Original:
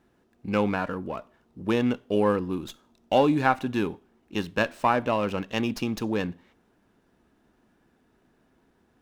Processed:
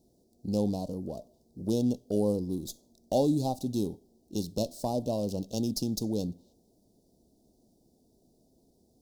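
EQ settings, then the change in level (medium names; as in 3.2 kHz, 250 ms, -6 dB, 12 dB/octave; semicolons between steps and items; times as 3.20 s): elliptic band-stop 670–4500 Hz, stop band 80 dB; dynamic bell 520 Hz, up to -5 dB, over -37 dBFS, Q 0.73; treble shelf 3.4 kHz +8.5 dB; 0.0 dB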